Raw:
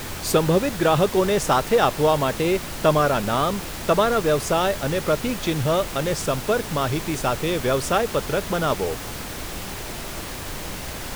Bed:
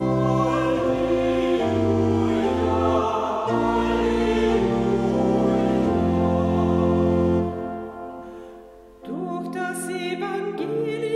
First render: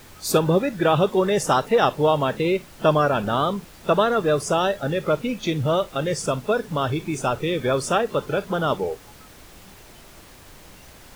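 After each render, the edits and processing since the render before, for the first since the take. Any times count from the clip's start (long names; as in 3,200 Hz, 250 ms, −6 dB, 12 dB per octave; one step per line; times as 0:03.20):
noise reduction from a noise print 14 dB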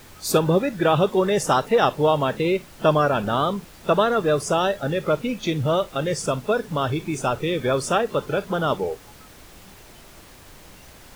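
no processing that can be heard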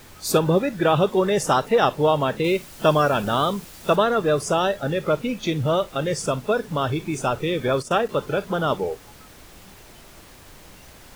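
0:02.44–0:03.96: high-shelf EQ 3,900 Hz +8 dB
0:07.68–0:08.09: noise gate −29 dBFS, range −14 dB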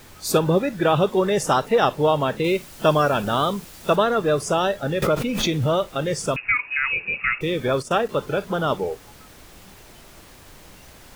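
0:05.02–0:05.75: background raised ahead of every attack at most 35 dB per second
0:06.36–0:07.41: voice inversion scrambler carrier 2,700 Hz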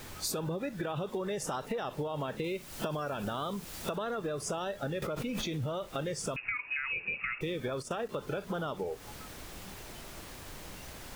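brickwall limiter −15.5 dBFS, peak gain reduction 11 dB
downward compressor 10 to 1, threshold −32 dBFS, peak gain reduction 13.5 dB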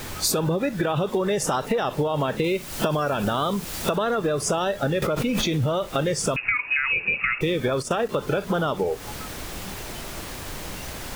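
level +11.5 dB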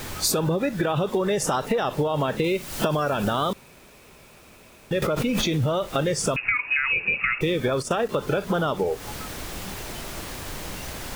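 0:03.53–0:04.91: fill with room tone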